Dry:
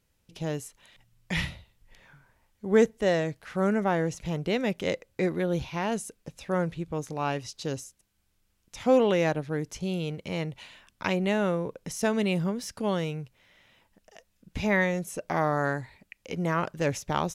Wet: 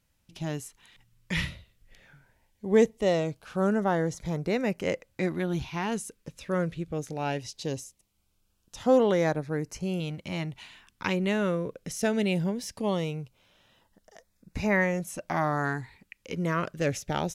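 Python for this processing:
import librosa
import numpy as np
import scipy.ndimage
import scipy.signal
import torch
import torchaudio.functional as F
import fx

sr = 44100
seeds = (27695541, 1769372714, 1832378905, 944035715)

y = fx.filter_lfo_notch(x, sr, shape='saw_up', hz=0.2, low_hz=400.0, high_hz=3900.0, q=2.6)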